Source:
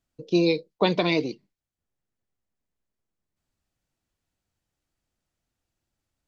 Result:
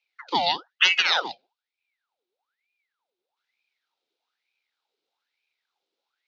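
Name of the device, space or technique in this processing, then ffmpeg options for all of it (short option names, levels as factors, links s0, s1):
voice changer toy: -af "aeval=exprs='val(0)*sin(2*PI*1400*n/s+1400*0.75/1.1*sin(2*PI*1.1*n/s))':c=same,highpass=560,equalizer=f=620:t=q:w=4:g=-8,equalizer=f=1100:t=q:w=4:g=-10,equalizer=f=1800:t=q:w=4:g=-9,equalizer=f=3800:t=q:w=4:g=6,lowpass=f=5000:w=0.5412,lowpass=f=5000:w=1.3066,volume=2.24"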